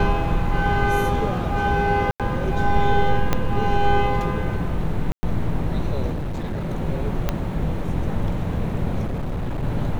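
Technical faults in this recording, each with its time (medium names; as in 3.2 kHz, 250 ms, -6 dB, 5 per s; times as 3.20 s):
2.11–2.20 s: dropout 87 ms
3.33 s: pop -5 dBFS
5.12–5.23 s: dropout 110 ms
6.12–6.70 s: clipped -23 dBFS
7.29 s: pop -8 dBFS
9.06–9.64 s: clipped -22 dBFS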